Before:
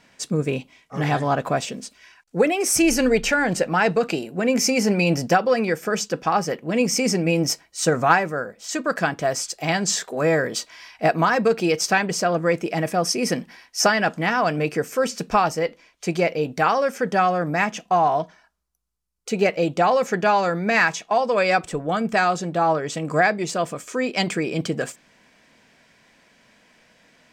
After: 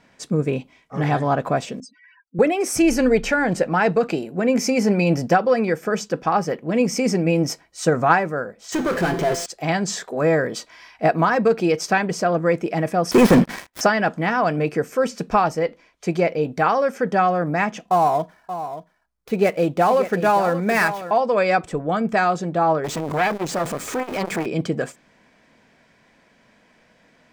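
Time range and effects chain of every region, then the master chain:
0:01.80–0:02.39: expanding power law on the bin magnitudes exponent 3.4 + high-pass filter 180 Hz
0:08.72–0:09.46: hollow resonant body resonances 380/3,100 Hz, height 17 dB, ringing for 95 ms + power curve on the samples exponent 0.35 + tuned comb filter 170 Hz, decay 0.75 s, mix 70%
0:13.11–0:13.81: gap after every zero crossing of 0.097 ms + leveller curve on the samples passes 5
0:17.90–0:21.11: gap after every zero crossing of 0.067 ms + single-tap delay 579 ms −11.5 dB
0:22.84–0:24.46: converter with a step at zero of −23 dBFS + saturating transformer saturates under 1,800 Hz
whole clip: high-shelf EQ 2,400 Hz −8.5 dB; notch filter 2,800 Hz, Q 24; level +2 dB

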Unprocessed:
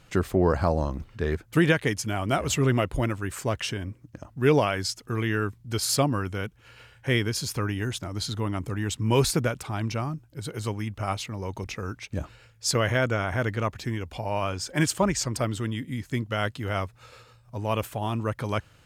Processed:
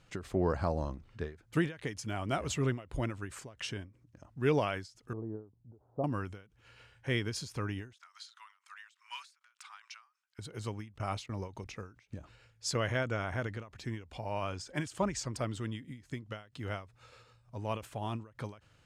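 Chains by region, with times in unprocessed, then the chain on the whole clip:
0:05.13–0:06.04: Butterworth low-pass 830 Hz + low-shelf EQ 280 Hz −7.5 dB
0:07.93–0:10.39: Butterworth high-pass 1,100 Hz + high-shelf EQ 9,700 Hz −8.5 dB + saturating transformer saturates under 2,100 Hz
0:10.92–0:11.48: noise gate −38 dBFS, range −21 dB + envelope flattener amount 50%
whole clip: low-pass filter 9,200 Hz 12 dB per octave; every ending faded ahead of time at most 160 dB per second; level −8 dB

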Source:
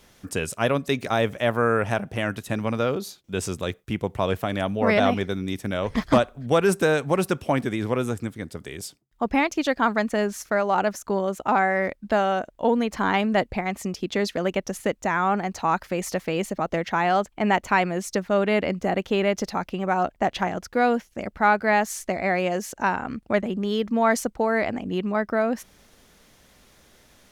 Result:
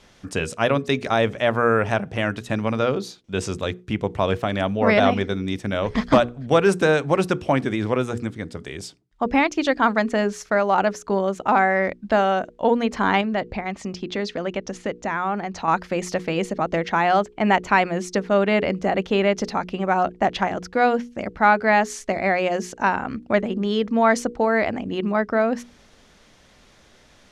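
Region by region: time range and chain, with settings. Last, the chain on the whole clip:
0:13.21–0:15.68: low-pass filter 7,100 Hz + downward compressor 1.5 to 1, threshold −31 dBFS
whole clip: low-pass filter 6,500 Hz 12 dB per octave; mains-hum notches 60/120/180/240/300/360/420/480 Hz; level +3 dB

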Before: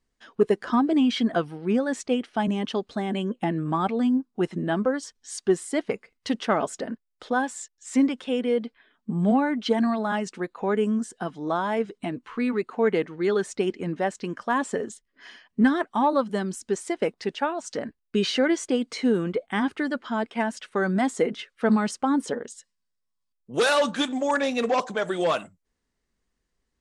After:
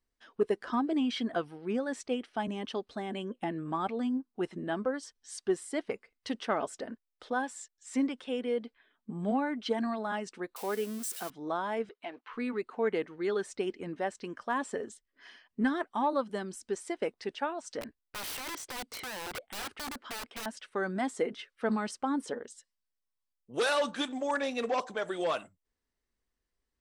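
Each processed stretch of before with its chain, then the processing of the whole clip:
0:10.56–0:11.30: spike at every zero crossing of −24.5 dBFS + high-pass filter 250 Hz 6 dB per octave
0:11.89–0:12.33: leveller curve on the samples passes 1 + three-way crossover with the lows and the highs turned down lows −23 dB, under 440 Hz, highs −24 dB, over 4,700 Hz
0:17.81–0:20.46: downward compressor 4 to 1, threshold −24 dBFS + wrap-around overflow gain 26.5 dB
whole clip: parametric band 170 Hz −6 dB 0.88 octaves; notch filter 6,800 Hz, Q 15; level −7 dB

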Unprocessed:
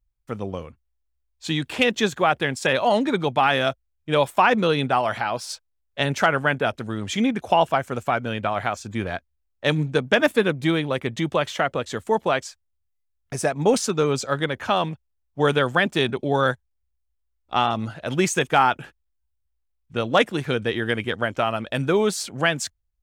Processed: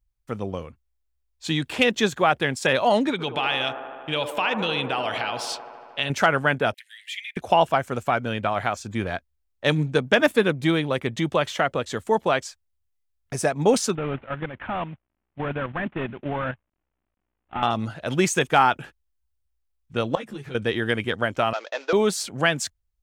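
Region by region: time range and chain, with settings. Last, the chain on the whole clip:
0:03.11–0:06.10: parametric band 2,900 Hz +13.5 dB 0.93 octaves + downward compressor 2 to 1, threshold −28 dBFS + delay with a band-pass on its return 77 ms, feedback 80%, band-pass 630 Hz, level −7 dB
0:06.74–0:07.37: Butterworth high-pass 1,800 Hz 96 dB per octave + parametric band 6,200 Hz −13 dB 1.1 octaves + multiband upward and downward compressor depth 40%
0:13.95–0:17.63: variable-slope delta modulation 16 kbit/s + parametric band 440 Hz −6.5 dB 0.48 octaves + output level in coarse steps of 9 dB
0:20.15–0:20.55: parametric band 150 Hz +7.5 dB 1 octave + downward compressor, threshold −28 dBFS + string-ensemble chorus
0:21.53–0:21.93: variable-slope delta modulation 32 kbit/s + Butterworth high-pass 410 Hz + downward expander −45 dBFS
whole clip: no processing

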